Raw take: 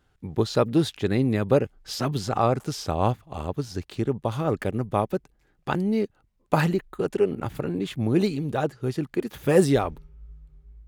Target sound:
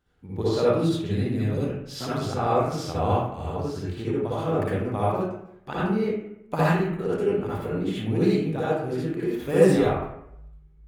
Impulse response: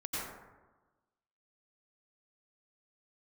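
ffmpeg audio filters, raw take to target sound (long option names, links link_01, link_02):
-filter_complex "[0:a]asettb=1/sr,asplit=3[link_01][link_02][link_03];[link_01]atrim=end=0.654[link_04];[link_02]atrim=start=0.65:end=1.64,asetpts=PTS-STARTPTS,afade=type=in:duration=0.004:curve=qsin,afade=type=out:start_time=0.986:duration=0.004:curve=qsin,acrossover=split=320|3000[link_05][link_06][link_07];[link_06]acompressor=threshold=-40dB:ratio=2.5[link_08];[link_05][link_08][link_07]amix=inputs=3:normalize=0[link_09];[link_03]atrim=start=1.636[link_10];[link_04][link_09]acrossfade=duration=0.004:curve1=hsin:curve2=qsin[link_11];[link_11][link_10]acrossfade=duration=0.004:curve1=qsin:curve2=hsin[link_12];[1:a]atrim=start_sample=2205,asetrate=70560,aresample=44100[link_13];[link_12][link_13]afir=irnorm=-1:irlink=0"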